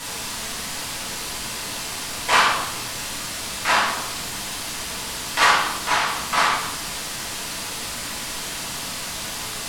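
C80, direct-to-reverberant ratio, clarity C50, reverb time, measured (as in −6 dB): 5.5 dB, −8.5 dB, 1.5 dB, 1.0 s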